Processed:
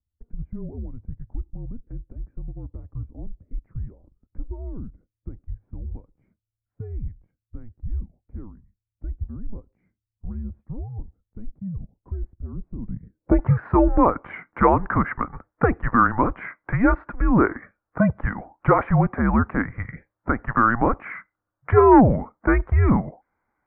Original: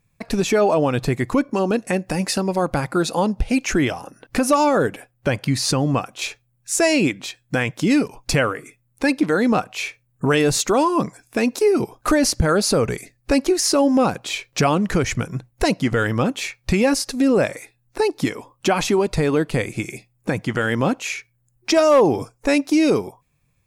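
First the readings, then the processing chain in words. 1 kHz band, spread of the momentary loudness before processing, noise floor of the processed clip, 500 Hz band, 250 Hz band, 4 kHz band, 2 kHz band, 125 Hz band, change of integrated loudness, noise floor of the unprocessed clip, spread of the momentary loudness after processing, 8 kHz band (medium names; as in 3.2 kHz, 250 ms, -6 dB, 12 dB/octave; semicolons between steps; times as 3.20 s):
0.0 dB, 10 LU, under -85 dBFS, -6.5 dB, -4.0 dB, under -35 dB, -5.0 dB, 0.0 dB, -1.0 dB, -66 dBFS, 20 LU, under -40 dB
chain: low-pass sweep 160 Hz -> 1.5 kHz, 12.76–13.50 s; mistuned SSB -230 Hz 270–2300 Hz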